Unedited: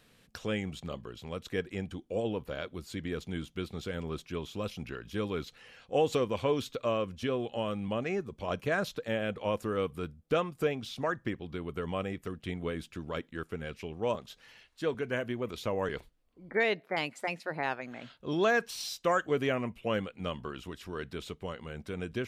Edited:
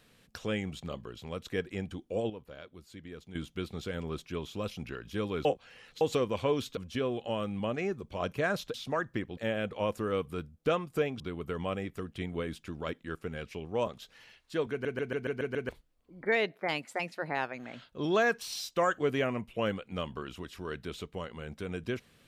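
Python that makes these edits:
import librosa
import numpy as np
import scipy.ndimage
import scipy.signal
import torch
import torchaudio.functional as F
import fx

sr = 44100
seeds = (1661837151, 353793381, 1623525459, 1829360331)

y = fx.edit(x, sr, fx.clip_gain(start_s=2.3, length_s=1.05, db=-10.0),
    fx.reverse_span(start_s=5.45, length_s=0.56),
    fx.cut(start_s=6.77, length_s=0.28),
    fx.move(start_s=10.85, length_s=0.63, to_s=9.02),
    fx.stutter_over(start_s=14.99, slice_s=0.14, count=7), tone=tone)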